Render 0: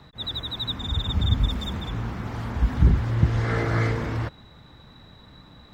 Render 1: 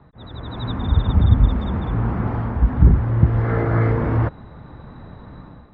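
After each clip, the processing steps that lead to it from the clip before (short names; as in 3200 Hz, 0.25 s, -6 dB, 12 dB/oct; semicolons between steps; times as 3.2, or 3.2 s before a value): LPF 1300 Hz 12 dB/oct; AGC gain up to 11 dB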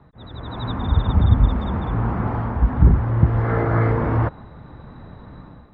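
dynamic EQ 940 Hz, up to +4 dB, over -41 dBFS, Q 0.93; gain -1 dB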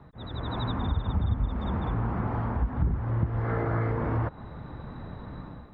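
compressor 3:1, threshold -27 dBFS, peak gain reduction 15 dB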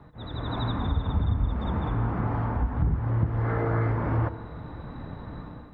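FDN reverb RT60 1.4 s, high-frequency decay 0.85×, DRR 10 dB; gain +1 dB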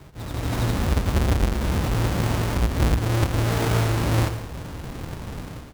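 half-waves squared off; echo 0.11 s -13 dB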